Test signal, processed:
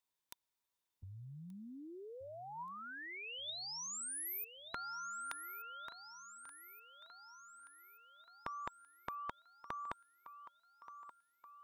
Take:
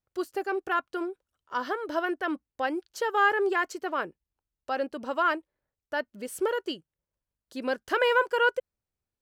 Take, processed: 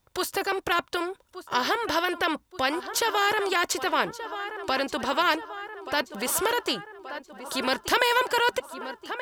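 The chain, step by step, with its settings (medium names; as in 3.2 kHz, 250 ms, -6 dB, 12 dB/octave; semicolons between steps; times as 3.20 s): small resonant body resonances 960/3600 Hz, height 10 dB, ringing for 30 ms; on a send: thinning echo 1178 ms, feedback 47%, high-pass 200 Hz, level -20.5 dB; on the sum: spectrum-flattening compressor 2:1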